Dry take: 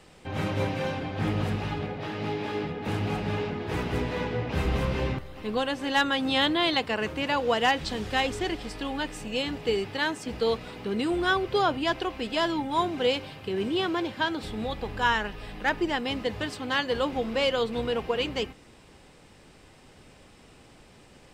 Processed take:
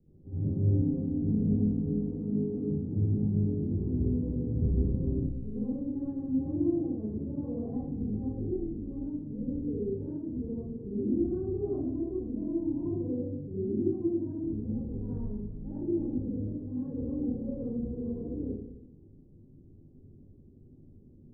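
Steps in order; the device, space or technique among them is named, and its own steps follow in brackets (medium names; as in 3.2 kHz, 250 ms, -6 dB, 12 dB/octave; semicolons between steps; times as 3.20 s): next room (low-pass 310 Hz 24 dB/octave; reverberation RT60 0.85 s, pre-delay 56 ms, DRR -10.5 dB); 0.81–2.71 s: comb 4.3 ms, depth 83%; trim -7 dB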